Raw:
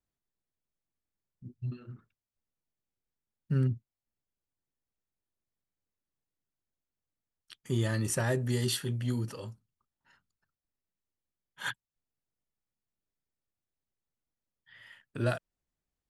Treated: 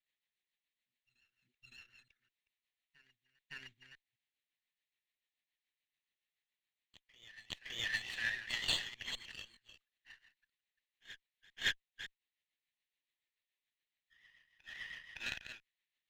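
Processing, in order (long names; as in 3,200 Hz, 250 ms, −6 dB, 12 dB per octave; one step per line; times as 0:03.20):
delay that plays each chunk backwards 208 ms, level −10 dB
elliptic band-pass filter 1,800–4,100 Hz, stop band 40 dB
in parallel at −2.5 dB: downward compressor, threshold −58 dBFS, peak gain reduction 22.5 dB
on the sum: rotating-speaker cabinet horn 7 Hz
on a send: backwards echo 563 ms −19 dB
on the sum: windowed peak hold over 3 samples
level +7.5 dB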